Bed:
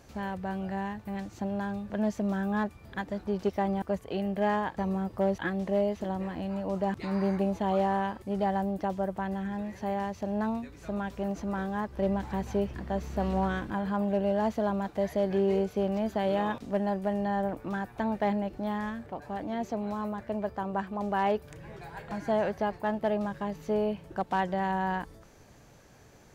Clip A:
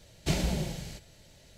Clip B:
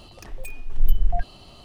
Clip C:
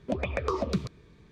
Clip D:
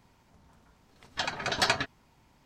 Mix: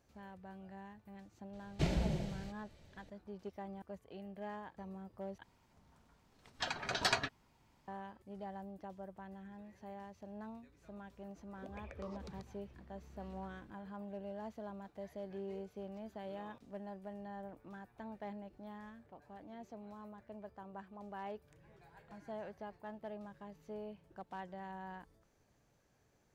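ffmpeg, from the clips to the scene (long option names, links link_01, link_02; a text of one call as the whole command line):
ffmpeg -i bed.wav -i cue0.wav -i cue1.wav -i cue2.wav -i cue3.wav -filter_complex "[0:a]volume=-18dB[link_01];[1:a]aemphasis=mode=reproduction:type=75kf[link_02];[3:a]acompressor=threshold=-32dB:ratio=6:attack=3.2:release=140:knee=1:detection=peak[link_03];[link_01]asplit=2[link_04][link_05];[link_04]atrim=end=5.434[link_06];[4:a]atrim=end=2.45,asetpts=PTS-STARTPTS,volume=-7dB[link_07];[link_05]atrim=start=7.876[link_08];[link_02]atrim=end=1.57,asetpts=PTS-STARTPTS,volume=-4.5dB,afade=type=in:duration=0.004:curve=hsin,afade=type=out:start_time=1.566:duration=0.004:curve=hsin,adelay=1530[link_09];[link_03]atrim=end=1.31,asetpts=PTS-STARTPTS,volume=-14.5dB,afade=type=in:duration=0.004:curve=hsin,afade=type=out:start_time=1.306:duration=0.004:curve=hsin,adelay=508914S[link_10];[link_06][link_07]acrossfade=duration=0.004:curve1=hsin:curve2=hsin[link_11];[link_11][link_08]acrossfade=duration=0.004:curve1=hsin:curve2=hsin[link_12];[link_12][link_09][link_10]amix=inputs=3:normalize=0" out.wav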